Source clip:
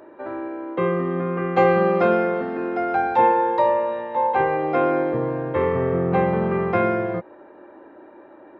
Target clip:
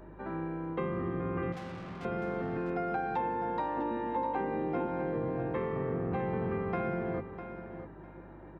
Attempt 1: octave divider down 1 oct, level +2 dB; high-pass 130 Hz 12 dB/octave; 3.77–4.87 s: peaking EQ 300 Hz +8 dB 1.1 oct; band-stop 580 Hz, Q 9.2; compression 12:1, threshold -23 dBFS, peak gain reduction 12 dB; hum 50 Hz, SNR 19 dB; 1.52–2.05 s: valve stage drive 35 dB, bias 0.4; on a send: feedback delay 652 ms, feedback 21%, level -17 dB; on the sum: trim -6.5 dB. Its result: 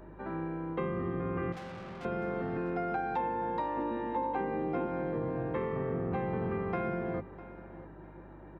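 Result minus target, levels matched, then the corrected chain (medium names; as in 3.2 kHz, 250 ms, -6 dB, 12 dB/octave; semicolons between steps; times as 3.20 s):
echo-to-direct -6.5 dB
octave divider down 1 oct, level +2 dB; high-pass 130 Hz 12 dB/octave; 3.77–4.87 s: peaking EQ 300 Hz +8 dB 1.1 oct; band-stop 580 Hz, Q 9.2; compression 12:1, threshold -23 dBFS, peak gain reduction 12 dB; hum 50 Hz, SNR 19 dB; 1.52–2.05 s: valve stage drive 35 dB, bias 0.4; on a send: feedback delay 652 ms, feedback 21%, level -10.5 dB; on the sum: trim -6.5 dB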